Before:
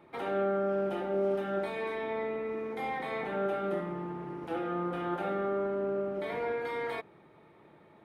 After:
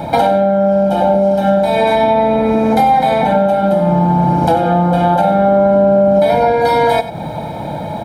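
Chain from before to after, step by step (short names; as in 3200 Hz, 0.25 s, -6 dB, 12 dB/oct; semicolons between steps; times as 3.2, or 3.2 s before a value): band shelf 1800 Hz -10.5 dB; comb 1.3 ms, depth 90%; compressor 12:1, threshold -44 dBFS, peak gain reduction 18.5 dB; echo 96 ms -13.5 dB; maximiser +36 dB; gain -1 dB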